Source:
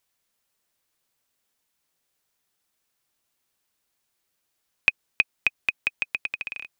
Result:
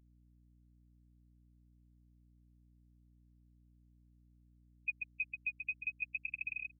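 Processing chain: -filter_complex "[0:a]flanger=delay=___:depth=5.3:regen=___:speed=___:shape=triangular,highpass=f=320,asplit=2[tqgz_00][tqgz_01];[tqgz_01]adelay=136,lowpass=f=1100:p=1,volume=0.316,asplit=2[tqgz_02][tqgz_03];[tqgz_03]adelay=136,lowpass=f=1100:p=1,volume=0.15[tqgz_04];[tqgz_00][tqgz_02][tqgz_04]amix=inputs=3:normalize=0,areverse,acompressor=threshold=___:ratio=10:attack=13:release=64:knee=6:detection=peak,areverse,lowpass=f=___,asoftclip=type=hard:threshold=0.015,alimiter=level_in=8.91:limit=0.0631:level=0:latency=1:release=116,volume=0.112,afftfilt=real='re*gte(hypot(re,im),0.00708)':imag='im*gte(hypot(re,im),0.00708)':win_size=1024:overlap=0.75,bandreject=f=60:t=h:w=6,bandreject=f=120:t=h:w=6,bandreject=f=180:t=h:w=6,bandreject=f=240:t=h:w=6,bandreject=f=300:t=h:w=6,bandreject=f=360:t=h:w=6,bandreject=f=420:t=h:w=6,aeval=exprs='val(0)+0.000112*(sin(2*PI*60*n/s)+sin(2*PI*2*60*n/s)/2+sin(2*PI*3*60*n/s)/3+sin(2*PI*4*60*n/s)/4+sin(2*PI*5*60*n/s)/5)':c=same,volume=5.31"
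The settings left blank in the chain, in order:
2.8, 47, 0.44, 0.0141, 1800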